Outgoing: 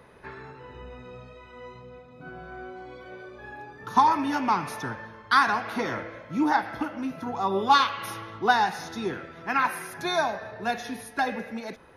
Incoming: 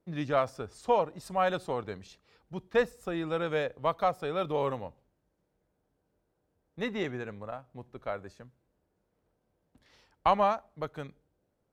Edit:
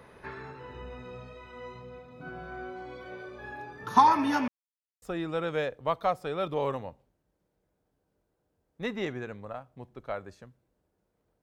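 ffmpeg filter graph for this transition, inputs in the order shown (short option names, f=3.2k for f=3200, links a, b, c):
-filter_complex "[0:a]apad=whole_dur=11.42,atrim=end=11.42,asplit=2[a][b];[a]atrim=end=4.48,asetpts=PTS-STARTPTS,afade=t=out:st=4.476:d=0.004:c=hsin[c];[b]atrim=start=4.48:end=5.02,asetpts=PTS-STARTPTS,volume=0[d];[1:a]atrim=start=3:end=9.4,asetpts=PTS-STARTPTS,afade=t=in:d=0.004:c=hsin[e];[c][d][e]concat=n=3:v=0:a=1"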